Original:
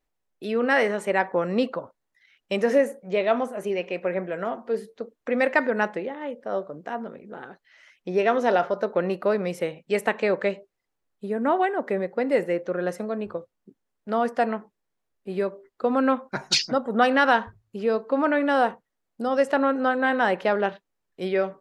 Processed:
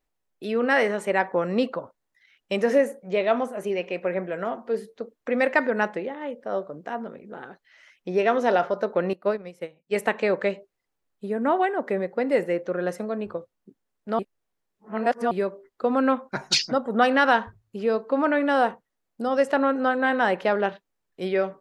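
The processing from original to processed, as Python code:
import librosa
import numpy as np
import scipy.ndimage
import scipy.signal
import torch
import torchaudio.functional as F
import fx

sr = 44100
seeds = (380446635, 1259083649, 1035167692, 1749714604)

y = fx.upward_expand(x, sr, threshold_db=-30.0, expansion=2.5, at=(9.13, 9.96))
y = fx.edit(y, sr, fx.reverse_span(start_s=14.19, length_s=1.12), tone=tone)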